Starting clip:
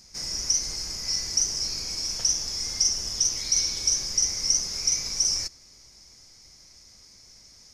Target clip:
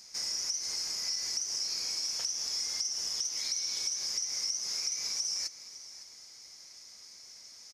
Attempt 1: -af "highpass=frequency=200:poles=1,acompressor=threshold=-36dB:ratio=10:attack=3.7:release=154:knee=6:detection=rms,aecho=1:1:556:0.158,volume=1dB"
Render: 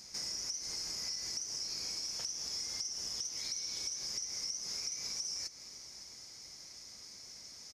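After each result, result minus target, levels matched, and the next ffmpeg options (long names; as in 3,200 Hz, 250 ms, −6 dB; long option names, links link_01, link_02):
250 Hz band +8.5 dB; downward compressor: peak gain reduction +6 dB
-af "highpass=frequency=740:poles=1,acompressor=threshold=-36dB:ratio=10:attack=3.7:release=154:knee=6:detection=rms,aecho=1:1:556:0.158,volume=1dB"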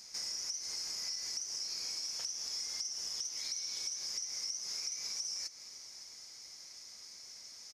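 downward compressor: peak gain reduction +6 dB
-af "highpass=frequency=740:poles=1,acompressor=threshold=-29.5dB:ratio=10:attack=3.7:release=154:knee=6:detection=rms,aecho=1:1:556:0.158,volume=1dB"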